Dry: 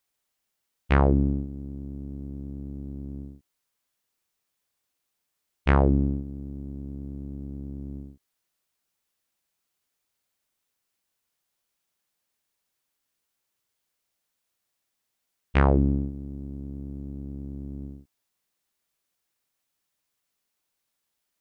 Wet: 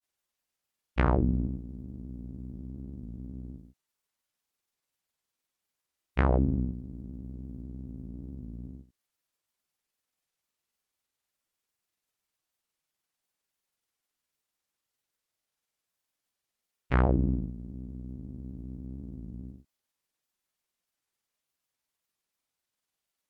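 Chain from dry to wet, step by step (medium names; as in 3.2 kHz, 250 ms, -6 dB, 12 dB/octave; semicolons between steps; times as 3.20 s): speed mistake 48 kHz file played as 44.1 kHz; granulator, spray 26 ms, pitch spread up and down by 0 st; warped record 33 1/3 rpm, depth 100 cents; trim -3.5 dB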